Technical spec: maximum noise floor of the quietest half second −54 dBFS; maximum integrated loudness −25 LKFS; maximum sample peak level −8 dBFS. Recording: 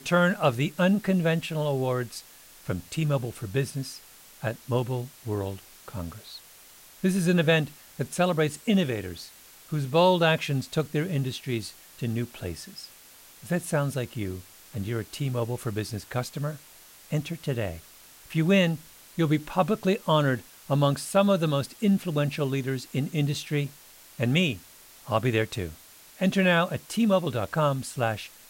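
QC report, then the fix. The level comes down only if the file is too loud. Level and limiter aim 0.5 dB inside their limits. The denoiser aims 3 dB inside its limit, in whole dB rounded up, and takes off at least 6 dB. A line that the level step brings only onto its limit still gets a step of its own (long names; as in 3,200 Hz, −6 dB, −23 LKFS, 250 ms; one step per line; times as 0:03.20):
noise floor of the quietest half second −51 dBFS: out of spec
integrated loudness −27.0 LKFS: in spec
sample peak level −9.0 dBFS: in spec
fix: broadband denoise 6 dB, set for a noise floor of −51 dBFS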